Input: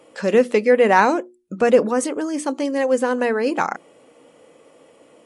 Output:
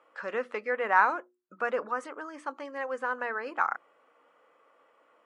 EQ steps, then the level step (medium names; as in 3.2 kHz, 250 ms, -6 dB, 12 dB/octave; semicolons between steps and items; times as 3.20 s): band-pass filter 1.3 kHz, Q 2.6; -1.5 dB